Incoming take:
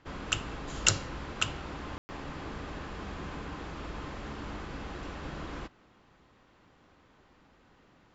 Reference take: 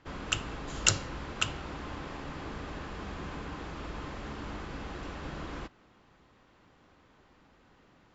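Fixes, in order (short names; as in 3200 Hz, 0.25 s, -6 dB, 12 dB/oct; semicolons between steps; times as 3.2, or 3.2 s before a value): room tone fill 1.98–2.09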